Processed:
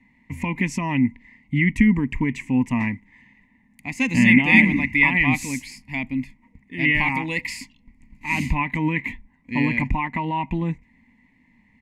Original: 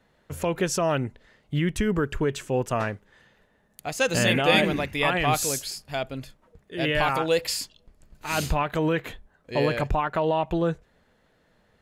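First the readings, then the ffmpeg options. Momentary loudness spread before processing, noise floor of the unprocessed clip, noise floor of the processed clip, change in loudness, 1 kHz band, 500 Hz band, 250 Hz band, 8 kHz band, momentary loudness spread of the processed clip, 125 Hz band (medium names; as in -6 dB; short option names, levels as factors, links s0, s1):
14 LU, -65 dBFS, -60 dBFS, +4.5 dB, -1.5 dB, -12.0 dB, +8.5 dB, -7.0 dB, 18 LU, +4.0 dB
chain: -af "firequalizer=gain_entry='entry(160,0);entry(250,13);entry(380,-15);entry(620,-19);entry(970,3);entry(1400,-30);entry(2000,14);entry(3300,-12);entry(7600,-9);entry(13000,-16)':delay=0.05:min_phase=1,volume=1.41"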